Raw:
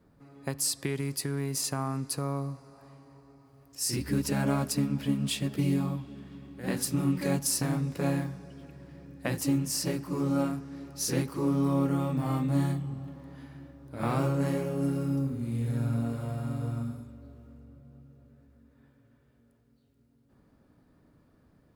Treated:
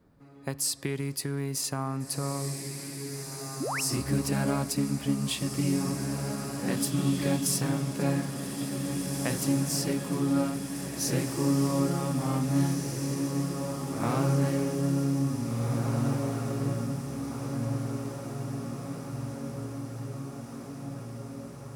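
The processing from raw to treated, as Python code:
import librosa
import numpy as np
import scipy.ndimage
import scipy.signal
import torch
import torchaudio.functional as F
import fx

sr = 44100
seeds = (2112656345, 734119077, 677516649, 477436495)

y = fx.echo_diffused(x, sr, ms=1897, feedback_pct=66, wet_db=-5.0)
y = fx.spec_paint(y, sr, seeds[0], shape='rise', start_s=3.6, length_s=0.21, low_hz=220.0, high_hz=3100.0, level_db=-32.0)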